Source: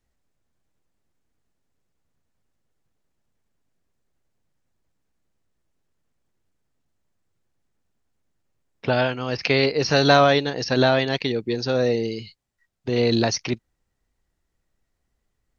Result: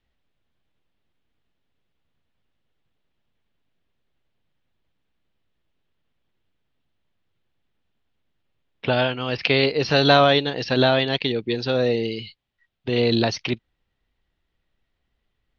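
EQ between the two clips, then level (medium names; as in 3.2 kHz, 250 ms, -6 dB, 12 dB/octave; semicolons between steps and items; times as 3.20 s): dynamic bell 2.3 kHz, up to -4 dB, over -32 dBFS, Q 0.98; resonant low-pass 3.3 kHz, resonance Q 2.5; 0.0 dB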